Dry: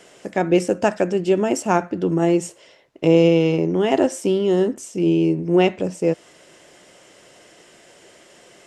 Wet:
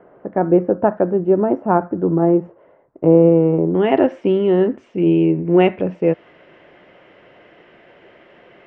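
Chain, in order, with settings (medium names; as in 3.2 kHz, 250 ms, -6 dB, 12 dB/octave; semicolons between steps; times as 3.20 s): low-pass 1.3 kHz 24 dB/octave, from 3.75 s 2.6 kHz; trim +3 dB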